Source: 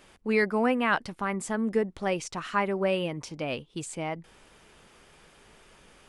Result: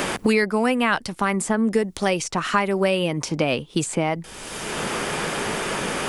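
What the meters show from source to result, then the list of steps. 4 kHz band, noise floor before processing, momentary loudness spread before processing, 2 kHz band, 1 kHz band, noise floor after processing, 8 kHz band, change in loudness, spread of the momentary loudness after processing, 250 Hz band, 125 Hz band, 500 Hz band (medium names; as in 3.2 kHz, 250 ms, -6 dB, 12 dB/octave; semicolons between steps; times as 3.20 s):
+12.0 dB, -58 dBFS, 10 LU, +7.0 dB, +7.0 dB, -43 dBFS, +13.0 dB, +6.0 dB, 6 LU, +7.5 dB, +9.5 dB, +6.5 dB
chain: tone controls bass +1 dB, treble +8 dB; three bands compressed up and down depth 100%; trim +6 dB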